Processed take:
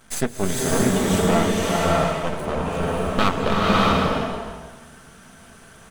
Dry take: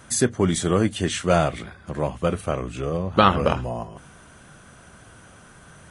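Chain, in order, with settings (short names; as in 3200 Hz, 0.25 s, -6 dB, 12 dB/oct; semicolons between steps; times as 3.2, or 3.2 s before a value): comb 4.5 ms, depth 47%; half-wave rectifier; bloom reverb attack 0.64 s, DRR -5.5 dB; gain -1.5 dB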